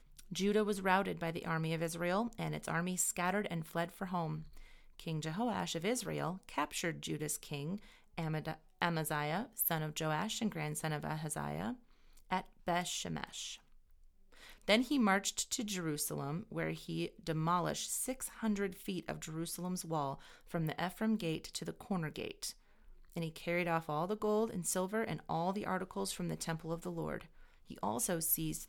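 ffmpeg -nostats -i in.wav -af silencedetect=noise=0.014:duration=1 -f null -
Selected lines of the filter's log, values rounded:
silence_start: 13.53
silence_end: 14.68 | silence_duration: 1.15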